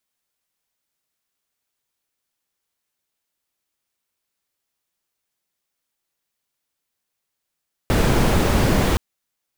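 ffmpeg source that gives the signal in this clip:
ffmpeg -f lavfi -i "anoisesrc=color=brown:amplitude=0.7:duration=1.07:sample_rate=44100:seed=1" out.wav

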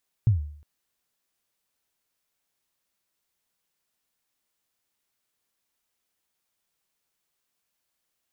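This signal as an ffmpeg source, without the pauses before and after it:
ffmpeg -f lavfi -i "aevalsrc='0.224*pow(10,-3*t/0.57)*sin(2*PI*(120*0.128/log(74/120)*(exp(log(74/120)*min(t,0.128)/0.128)-1)+74*max(t-0.128,0)))':duration=0.36:sample_rate=44100" out.wav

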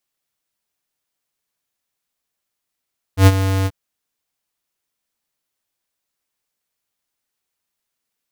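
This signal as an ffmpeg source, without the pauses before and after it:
ffmpeg -f lavfi -i "aevalsrc='0.501*(2*lt(mod(96*t,1),0.5)-1)':duration=0.535:sample_rate=44100,afade=type=in:duration=0.097,afade=type=out:start_time=0.097:duration=0.042:silence=0.266,afade=type=out:start_time=0.49:duration=0.045" out.wav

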